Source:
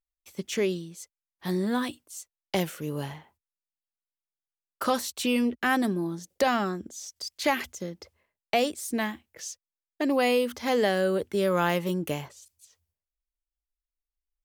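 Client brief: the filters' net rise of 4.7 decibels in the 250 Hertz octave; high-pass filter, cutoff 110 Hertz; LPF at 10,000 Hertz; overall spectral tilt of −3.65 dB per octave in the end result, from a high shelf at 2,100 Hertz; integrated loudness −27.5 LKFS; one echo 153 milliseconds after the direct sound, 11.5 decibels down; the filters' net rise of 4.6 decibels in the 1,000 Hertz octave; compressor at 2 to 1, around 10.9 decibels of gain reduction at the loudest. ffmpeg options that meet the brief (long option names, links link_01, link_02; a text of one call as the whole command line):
ffmpeg -i in.wav -af "highpass=110,lowpass=10000,equalizer=frequency=250:width_type=o:gain=5.5,equalizer=frequency=1000:width_type=o:gain=4.5,highshelf=frequency=2100:gain=7,acompressor=threshold=-36dB:ratio=2,aecho=1:1:153:0.266,volume=6dB" out.wav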